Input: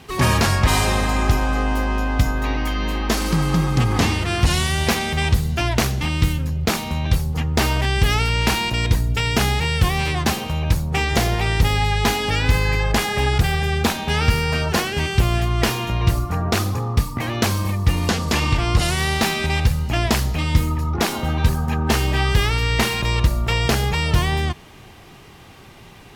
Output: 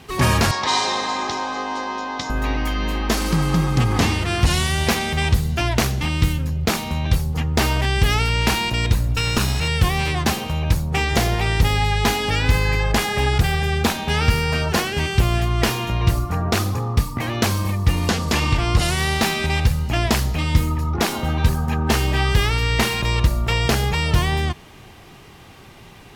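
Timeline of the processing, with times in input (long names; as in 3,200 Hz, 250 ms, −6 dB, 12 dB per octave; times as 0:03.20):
0:00.51–0:02.30: loudspeaker in its box 380–6,800 Hz, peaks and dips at 620 Hz −5 dB, 980 Hz +6 dB, 1,400 Hz −6 dB, 2,600 Hz −6 dB, 3,900 Hz +7 dB, 5,800 Hz +4 dB
0:08.90–0:09.68: lower of the sound and its delayed copy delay 0.75 ms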